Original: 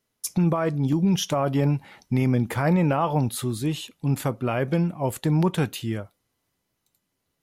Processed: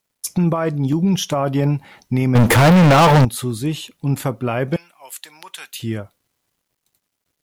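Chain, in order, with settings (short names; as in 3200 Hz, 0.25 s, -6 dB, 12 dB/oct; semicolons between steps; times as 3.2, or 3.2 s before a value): 2.35–3.25 sample leveller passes 5; 4.76–5.8 Bessel high-pass 2500 Hz, order 2; bit-crush 12-bit; gain +4 dB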